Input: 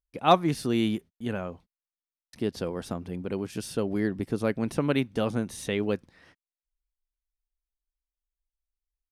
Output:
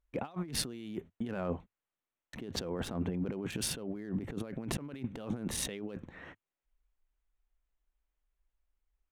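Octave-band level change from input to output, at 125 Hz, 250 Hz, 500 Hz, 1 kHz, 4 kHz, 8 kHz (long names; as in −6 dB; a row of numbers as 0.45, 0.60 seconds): −7.0, −9.0, −12.0, −17.5, −4.0, +3.5 decibels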